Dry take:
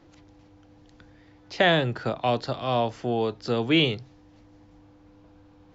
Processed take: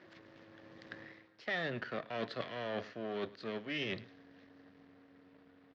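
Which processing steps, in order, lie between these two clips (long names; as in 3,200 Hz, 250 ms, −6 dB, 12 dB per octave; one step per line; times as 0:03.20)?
gain on one half-wave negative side −12 dB
source passing by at 0:01.88, 30 m/s, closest 15 metres
reversed playback
downward compressor 12 to 1, threshold −47 dBFS, peak gain reduction 27.5 dB
reversed playback
loudspeaker in its box 190–4,700 Hz, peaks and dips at 330 Hz −4 dB, 850 Hz −8 dB, 1,800 Hz +9 dB
single-tap delay 105 ms −20.5 dB
level +14.5 dB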